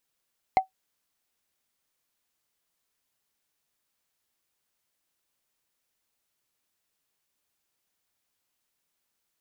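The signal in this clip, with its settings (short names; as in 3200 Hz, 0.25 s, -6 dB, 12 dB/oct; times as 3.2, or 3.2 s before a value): wood hit, lowest mode 760 Hz, decay 0.12 s, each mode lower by 10.5 dB, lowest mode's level -11.5 dB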